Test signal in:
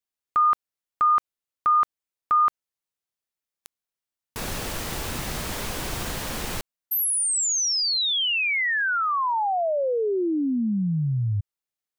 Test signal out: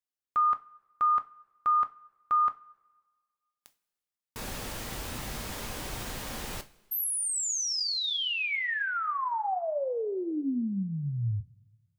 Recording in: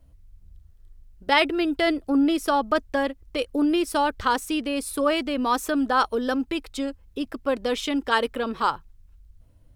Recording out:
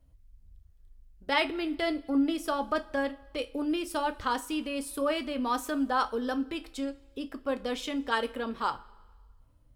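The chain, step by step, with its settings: two-slope reverb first 0.25 s, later 1.5 s, from -20 dB, DRR 8 dB; trim -7.5 dB

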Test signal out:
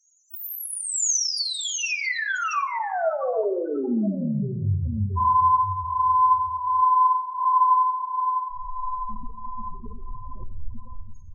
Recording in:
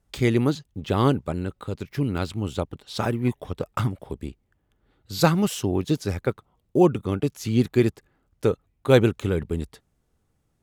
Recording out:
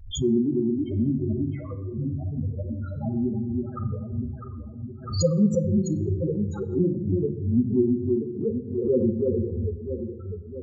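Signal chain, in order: peaking EQ 6.6 kHz +9.5 dB 0.49 oct; chorus voices 6, 1.3 Hz, delay 11 ms, depth 3 ms; echo whose repeats swap between lows and highs 326 ms, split 850 Hz, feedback 71%, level -3 dB; loudest bins only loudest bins 4; simulated room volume 2700 m³, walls furnished, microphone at 1.6 m; swell ahead of each attack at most 100 dB/s

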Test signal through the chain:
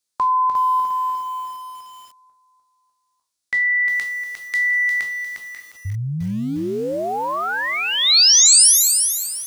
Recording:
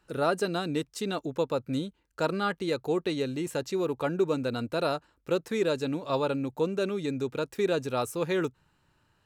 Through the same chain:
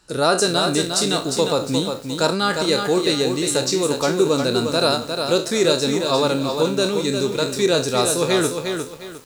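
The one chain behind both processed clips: spectral sustain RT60 0.33 s; high-order bell 6.3 kHz +11 dB; bit-crushed delay 354 ms, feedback 35%, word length 8-bit, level -5.5 dB; trim +7.5 dB

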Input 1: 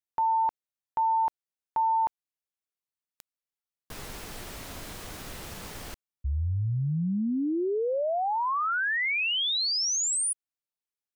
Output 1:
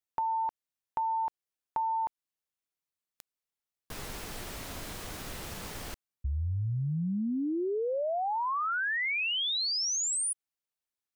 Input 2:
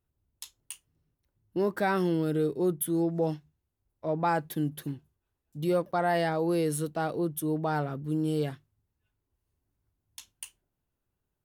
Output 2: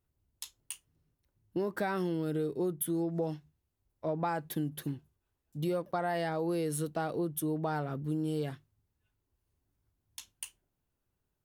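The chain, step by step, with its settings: compression, threshold -29 dBFS

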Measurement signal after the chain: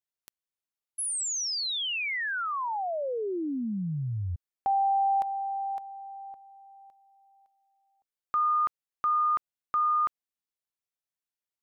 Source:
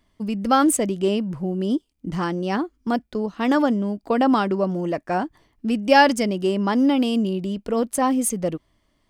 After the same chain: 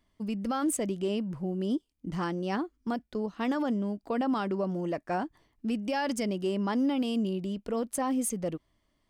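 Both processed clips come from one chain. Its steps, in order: peak limiter -14.5 dBFS; trim -7 dB

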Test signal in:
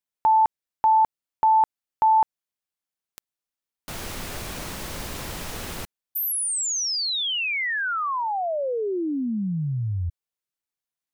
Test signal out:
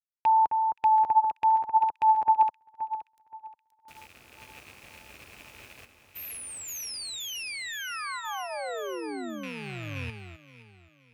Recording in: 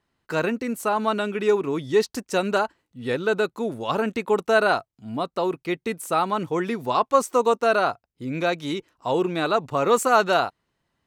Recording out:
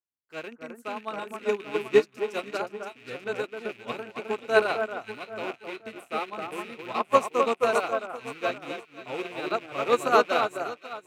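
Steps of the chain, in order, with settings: rattle on loud lows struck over -40 dBFS, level -17 dBFS; high-pass 66 Hz; peaking EQ 170 Hz -10.5 dB 0.37 oct; band-stop 950 Hz, Q 16; vibrato 0.76 Hz 13 cents; echo whose repeats swap between lows and highs 262 ms, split 1.6 kHz, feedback 77%, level -2 dB; upward expansion 2.5:1, over -33 dBFS

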